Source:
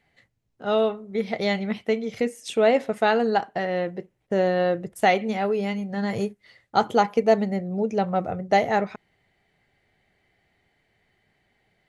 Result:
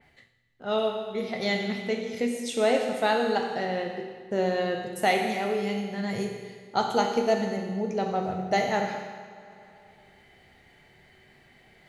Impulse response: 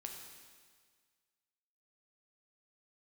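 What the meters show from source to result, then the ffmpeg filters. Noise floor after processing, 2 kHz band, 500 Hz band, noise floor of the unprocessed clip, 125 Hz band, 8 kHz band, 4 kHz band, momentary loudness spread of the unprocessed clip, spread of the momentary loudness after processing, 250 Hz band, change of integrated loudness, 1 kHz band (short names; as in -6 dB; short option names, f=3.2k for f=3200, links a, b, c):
-58 dBFS, -2.0 dB, -4.0 dB, -72 dBFS, -4.0 dB, +3.0 dB, +1.0 dB, 8 LU, 8 LU, -3.5 dB, -3.5 dB, -3.5 dB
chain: -filter_complex "[1:a]atrim=start_sample=2205[a];[0:a][a]afir=irnorm=-1:irlink=0,areverse,acompressor=mode=upward:threshold=-43dB:ratio=2.5,areverse,adynamicequalizer=threshold=0.00631:dfrequency=3300:dqfactor=0.7:tfrequency=3300:tqfactor=0.7:attack=5:release=100:ratio=0.375:range=3.5:mode=boostabove:tftype=highshelf"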